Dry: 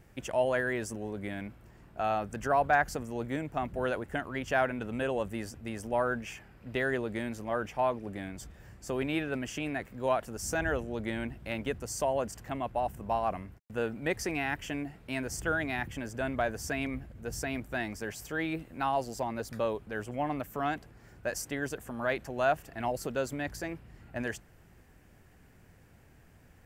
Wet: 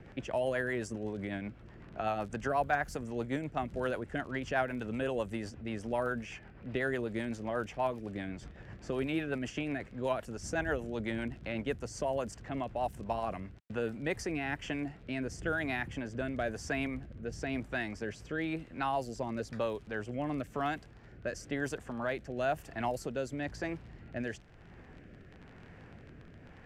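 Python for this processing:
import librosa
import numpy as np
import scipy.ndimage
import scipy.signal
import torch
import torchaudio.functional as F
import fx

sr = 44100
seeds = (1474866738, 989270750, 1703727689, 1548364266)

y = fx.rotary_switch(x, sr, hz=8.0, then_hz=1.0, switch_at_s=13.5)
y = fx.dmg_crackle(y, sr, seeds[0], per_s=29.0, level_db=-45.0)
y = fx.env_lowpass(y, sr, base_hz=2600.0, full_db=-28.5)
y = fx.band_squash(y, sr, depth_pct=40)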